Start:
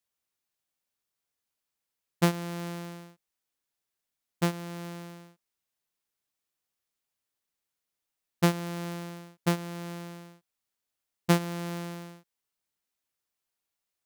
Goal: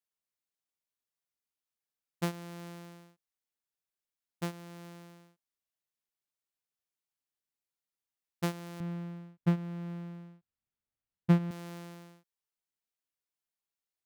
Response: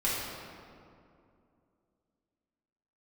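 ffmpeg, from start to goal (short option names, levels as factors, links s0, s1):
-filter_complex "[0:a]asettb=1/sr,asplit=3[s0][s1][s2];[s0]atrim=end=8.804[s3];[s1]atrim=start=8.8:end=11.51,asetpts=PTS-STARTPTS,afade=t=in:d=0.004:c=qsin,afade=t=out:st=2.706:d=0.004:c=qsin,bass=f=250:g=13,treble=f=4000:g=-14[s4];[s2]atrim=start=11.506[s5];[s3][s4]acrossfade=d=0.004:c1=hsin:c2=qsin[s6];[s6][s5]acrossfade=d=0.004:c1=qsin:c2=hsin,volume=0.355"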